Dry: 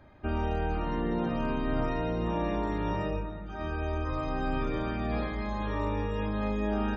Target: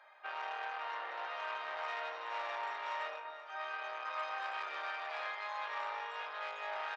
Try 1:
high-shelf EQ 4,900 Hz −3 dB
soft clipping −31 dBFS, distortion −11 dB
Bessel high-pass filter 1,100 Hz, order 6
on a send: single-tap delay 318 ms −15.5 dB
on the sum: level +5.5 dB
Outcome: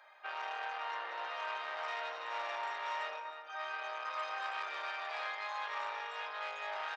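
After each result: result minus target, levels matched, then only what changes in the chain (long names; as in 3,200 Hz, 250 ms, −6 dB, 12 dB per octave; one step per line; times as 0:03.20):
echo 163 ms early; 8,000 Hz band +3.5 dB
change: single-tap delay 481 ms −15.5 dB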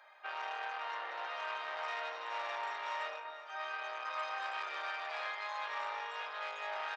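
8,000 Hz band +4.0 dB
change: high-shelf EQ 4,900 Hz −11.5 dB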